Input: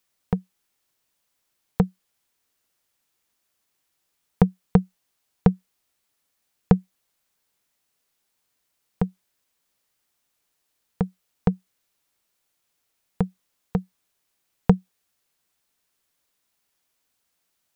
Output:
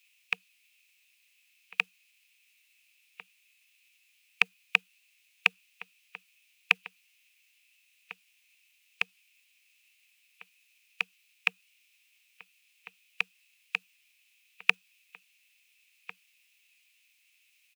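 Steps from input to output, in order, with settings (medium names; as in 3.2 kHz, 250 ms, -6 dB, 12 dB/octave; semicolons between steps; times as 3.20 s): resonant high-pass 1.8 kHz, resonance Q 11; echo from a far wall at 240 m, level -15 dB; formant shift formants +6 st; trim +4 dB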